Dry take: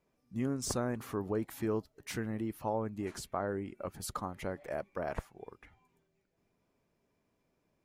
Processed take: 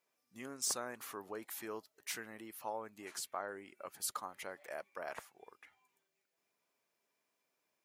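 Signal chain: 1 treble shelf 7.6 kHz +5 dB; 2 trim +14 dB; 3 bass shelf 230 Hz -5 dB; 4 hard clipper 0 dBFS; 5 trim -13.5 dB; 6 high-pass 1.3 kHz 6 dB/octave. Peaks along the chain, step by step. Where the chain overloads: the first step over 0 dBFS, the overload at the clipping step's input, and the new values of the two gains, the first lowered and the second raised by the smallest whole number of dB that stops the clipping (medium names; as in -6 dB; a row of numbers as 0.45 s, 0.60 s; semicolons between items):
-16.0 dBFS, -2.0 dBFS, -3.0 dBFS, -3.0 dBFS, -16.5 dBFS, -23.5 dBFS; nothing clips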